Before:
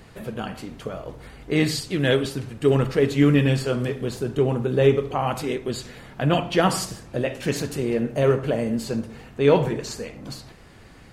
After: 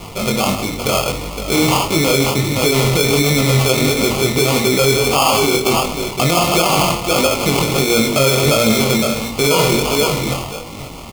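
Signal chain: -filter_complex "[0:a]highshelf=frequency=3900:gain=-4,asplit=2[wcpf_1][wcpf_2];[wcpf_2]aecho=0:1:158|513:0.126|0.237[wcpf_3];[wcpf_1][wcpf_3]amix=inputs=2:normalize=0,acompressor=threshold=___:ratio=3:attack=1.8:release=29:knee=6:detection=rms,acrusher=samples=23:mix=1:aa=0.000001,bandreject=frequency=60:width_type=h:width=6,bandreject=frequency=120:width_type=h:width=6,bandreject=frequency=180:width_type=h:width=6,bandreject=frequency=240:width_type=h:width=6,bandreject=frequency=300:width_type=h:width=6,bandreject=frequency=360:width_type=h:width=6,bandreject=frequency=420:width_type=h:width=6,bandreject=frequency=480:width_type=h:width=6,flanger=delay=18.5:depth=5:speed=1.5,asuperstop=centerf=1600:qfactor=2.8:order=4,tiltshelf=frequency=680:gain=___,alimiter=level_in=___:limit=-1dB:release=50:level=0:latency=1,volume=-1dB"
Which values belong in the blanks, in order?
-26dB, -4.5, 22dB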